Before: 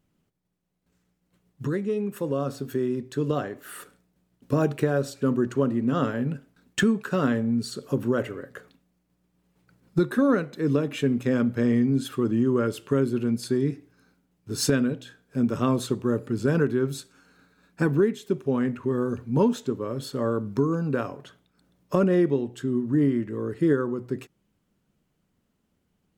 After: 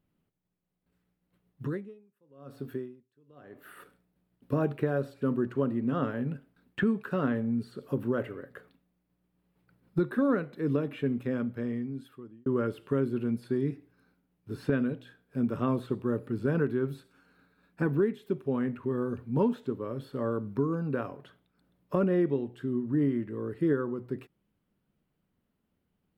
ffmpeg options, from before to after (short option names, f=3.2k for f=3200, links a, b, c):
-filter_complex "[0:a]asettb=1/sr,asplit=3[a][b][c];[a]atrim=end=1.674[d];[b]atrim=start=1.67:end=3.77,asetpts=PTS-STARTPTS,afade=t=in:d=0.004:c=qsin,afade=t=out:st=2.096:d=0.004:c=qsin,aeval=exprs='val(0)*pow(10,-34*(0.5-0.5*cos(2*PI*1*n/s))/20)':c=same[e];[c]atrim=start=3.766[f];[d][e]acrossfade=d=0.004:c1=hsin:c2=qsin[g];[g][f]acrossfade=d=0.004:c1=qsin:c2=hsin,asplit=2[h][i];[h]atrim=end=12.46,asetpts=PTS-STARTPTS,afade=t=out:st=10.93:d=1.53[j];[i]atrim=start=12.46,asetpts=PTS-STARTPTS,afade=t=in:d=0.004:c=hsin[k];[j][k]concat=n=2:v=0:a=1,acrossover=split=2700[l][m];[m]acompressor=threshold=-48dB:ratio=4:attack=1:release=60[n];[l][n]amix=inputs=2:normalize=0,equalizer=f=6.6k:w=1.5:g=-13.5,volume=-5dB"